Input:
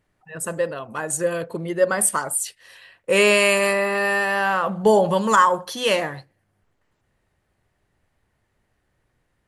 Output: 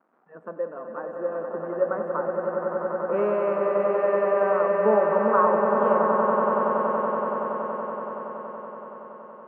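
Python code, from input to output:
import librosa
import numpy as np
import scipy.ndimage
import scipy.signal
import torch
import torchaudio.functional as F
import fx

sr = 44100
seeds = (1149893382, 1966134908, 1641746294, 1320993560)

y = fx.dmg_crackle(x, sr, seeds[0], per_s=430.0, level_db=-36.0)
y = scipy.signal.sosfilt(scipy.signal.cheby1(3, 1.0, [210.0, 1300.0], 'bandpass', fs=sr, output='sos'), y)
y = fx.echo_swell(y, sr, ms=94, loudest=8, wet_db=-7.5)
y = y * 10.0 ** (-6.0 / 20.0)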